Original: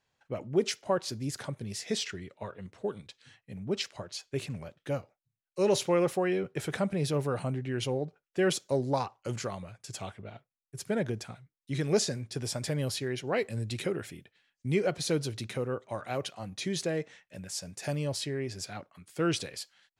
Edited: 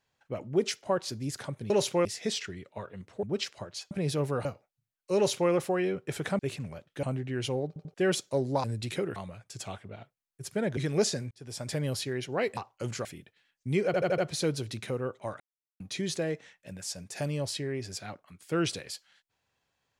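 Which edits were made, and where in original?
2.88–3.61 cut
4.29–4.93 swap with 6.87–7.41
5.64–5.99 copy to 1.7
8.05 stutter in place 0.09 s, 3 plays
9.02–9.5 swap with 13.52–14.04
11.11–11.72 cut
12.26–12.69 fade in
14.85 stutter 0.08 s, 5 plays
16.07–16.47 mute

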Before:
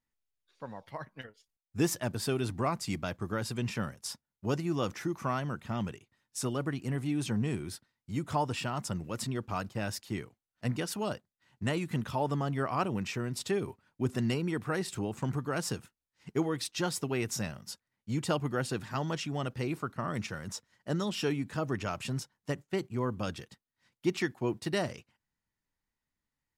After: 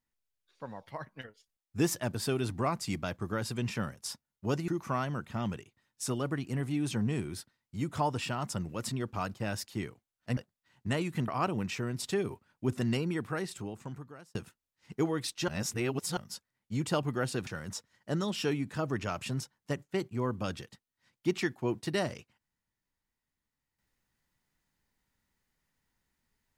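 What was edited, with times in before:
4.68–5.03 cut
10.72–11.13 cut
12.04–12.65 cut
14.44–15.72 fade out
16.85–17.54 reverse
18.84–20.26 cut

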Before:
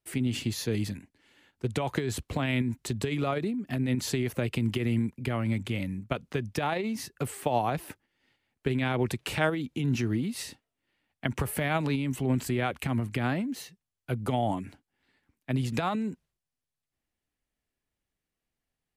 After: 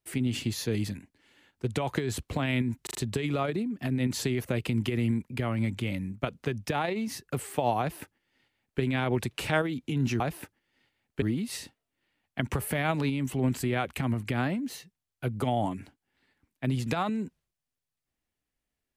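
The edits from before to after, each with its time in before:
2.83 stutter 0.04 s, 4 plays
7.67–8.69 copy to 10.08

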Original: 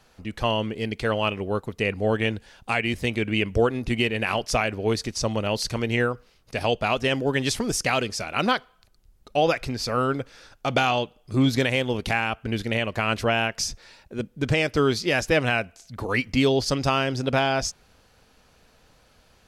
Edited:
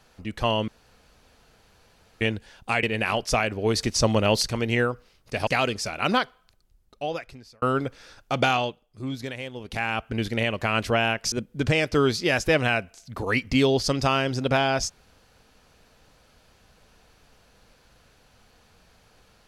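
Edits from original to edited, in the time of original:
0.68–2.21 room tone
2.83–4.04 cut
4.96–5.64 gain +4.5 dB
6.68–7.81 cut
8.46–9.96 fade out
10.85–12.33 dip -11.5 dB, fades 0.36 s
13.66–14.14 cut

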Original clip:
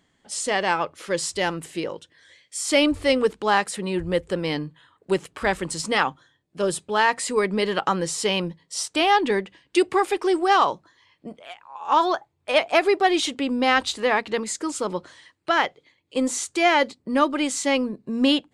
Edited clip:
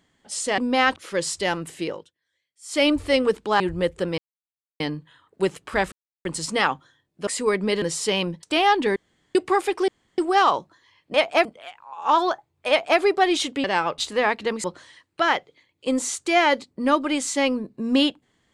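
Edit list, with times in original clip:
0.58–0.92 swap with 13.47–13.85
1.85–2.81 dip -23.5 dB, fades 0.24 s
3.56–3.91 cut
4.49 insert silence 0.62 s
5.61 insert silence 0.33 s
6.63–7.17 cut
7.72–7.99 cut
8.6–8.87 cut
9.4–9.79 room tone
10.32 insert room tone 0.30 s
12.52–12.83 copy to 11.28
14.51–14.93 cut

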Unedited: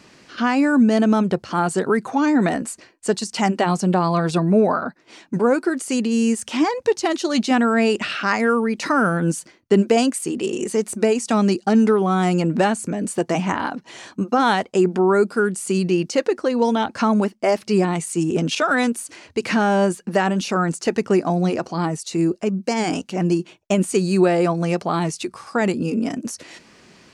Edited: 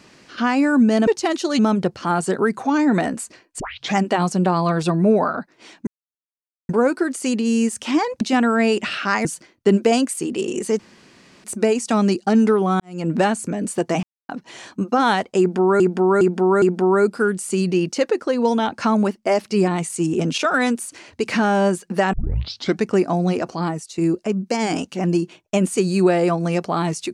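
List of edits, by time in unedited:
3.08 tape start 0.36 s
5.35 insert silence 0.82 s
6.87–7.39 move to 1.07
8.43–9.3 cut
10.84 insert room tone 0.65 s
12.2–12.5 fade in quadratic
13.43–13.69 mute
14.79–15.2 loop, 4 plays
20.3 tape start 0.71 s
21.77–22.15 fade out, to -8.5 dB

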